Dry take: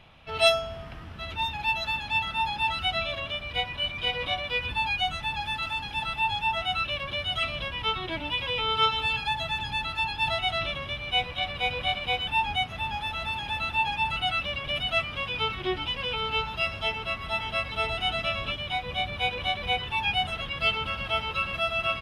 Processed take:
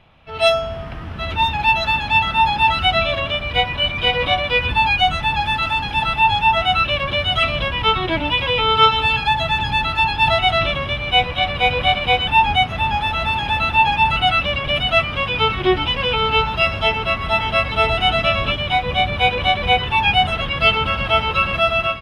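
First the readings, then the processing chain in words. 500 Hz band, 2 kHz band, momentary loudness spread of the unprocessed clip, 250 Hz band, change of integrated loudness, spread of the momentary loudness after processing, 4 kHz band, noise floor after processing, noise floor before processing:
+11.5 dB, +10.0 dB, 5 LU, +13.0 dB, +10.5 dB, 5 LU, +9.0 dB, -28 dBFS, -39 dBFS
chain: treble shelf 3.6 kHz -9 dB; level rider gain up to 11.5 dB; trim +2 dB

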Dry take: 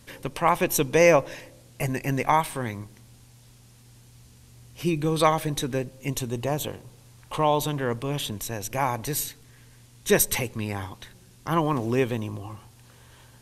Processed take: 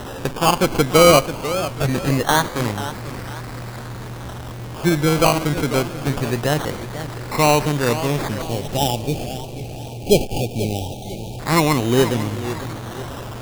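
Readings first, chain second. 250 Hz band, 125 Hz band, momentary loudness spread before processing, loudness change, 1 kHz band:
+8.0 dB, +8.5 dB, 15 LU, +6.0 dB, +5.5 dB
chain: one-bit delta coder 32 kbps, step -32.5 dBFS; decimation with a swept rate 19×, swing 60% 0.23 Hz; spectral selection erased 8.42–11.40 s, 870–2300 Hz; modulated delay 493 ms, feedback 40%, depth 164 cents, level -12 dB; trim +7.5 dB

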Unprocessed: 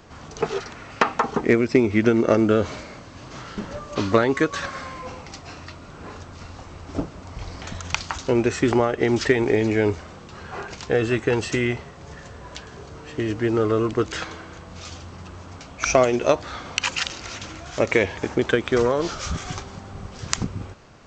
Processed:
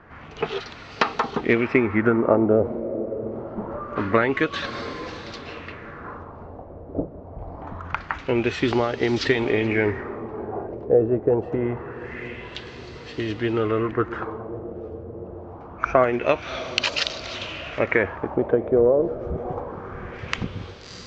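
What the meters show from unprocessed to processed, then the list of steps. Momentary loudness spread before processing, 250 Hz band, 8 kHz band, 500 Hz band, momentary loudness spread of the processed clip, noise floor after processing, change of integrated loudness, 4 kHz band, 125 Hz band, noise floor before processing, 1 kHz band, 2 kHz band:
21 LU, -1.5 dB, under -10 dB, 0.0 dB, 18 LU, -41 dBFS, -1.5 dB, +0.5 dB, -2.0 dB, -42 dBFS, 0.0 dB, 0.0 dB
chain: echo that smears into a reverb 650 ms, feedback 55%, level -13 dB; LFO low-pass sine 0.25 Hz 560–4400 Hz; trim -2.5 dB

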